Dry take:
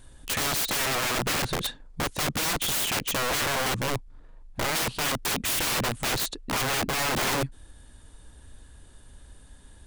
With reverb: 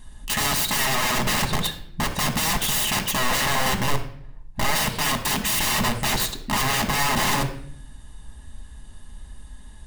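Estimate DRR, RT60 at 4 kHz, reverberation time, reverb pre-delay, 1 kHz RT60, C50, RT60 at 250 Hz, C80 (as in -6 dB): 4.0 dB, 0.50 s, 0.60 s, 5 ms, 0.55 s, 10.0 dB, 1.0 s, 14.0 dB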